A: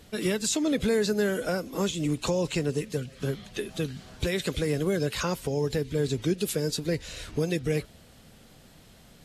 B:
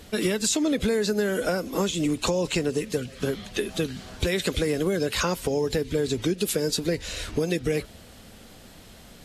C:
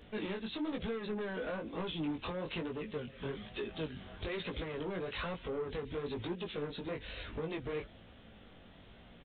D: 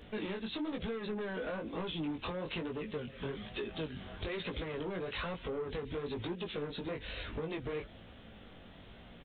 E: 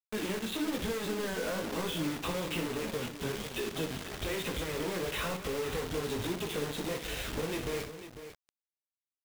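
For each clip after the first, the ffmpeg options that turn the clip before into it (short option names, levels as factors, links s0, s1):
-af "equalizer=f=140:w=4.3:g=-9,acompressor=threshold=0.0447:ratio=6,volume=2.11"
-af "aresample=8000,asoftclip=type=tanh:threshold=0.0501,aresample=44100,flanger=delay=17:depth=5.1:speed=1.1,volume=0.562"
-af "acompressor=threshold=0.01:ratio=2,volume=1.41"
-filter_complex "[0:a]acrusher=bits=6:mix=0:aa=0.000001,asplit=2[s0][s1];[s1]aecho=0:1:60|208|498:0.335|0.15|0.266[s2];[s0][s2]amix=inputs=2:normalize=0,volume=1.41"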